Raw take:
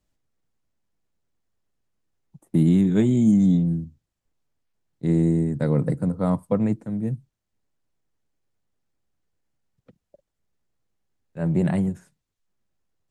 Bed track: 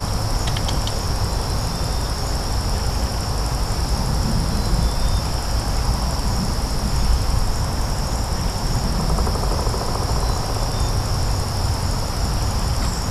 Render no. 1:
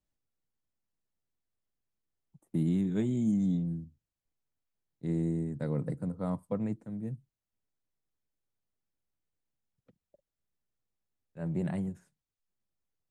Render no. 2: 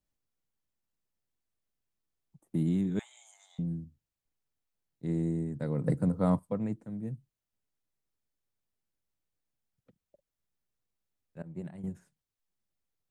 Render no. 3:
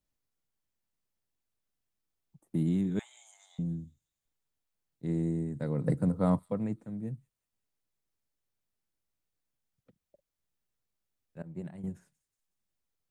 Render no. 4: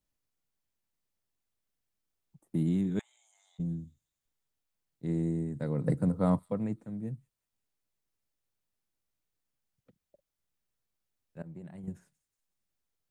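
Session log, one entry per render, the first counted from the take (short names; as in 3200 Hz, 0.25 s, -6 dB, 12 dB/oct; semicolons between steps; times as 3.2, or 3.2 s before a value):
gain -11 dB
2.99–3.59 steep high-pass 780 Hz 48 dB/oct; 5.84–6.39 gain +7 dB; 11.42–11.84 expander -25 dBFS
thin delay 0.183 s, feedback 48%, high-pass 4400 Hz, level -15.5 dB
3.01–3.6 level quantiser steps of 23 dB; 11.42–11.88 compressor, threshold -41 dBFS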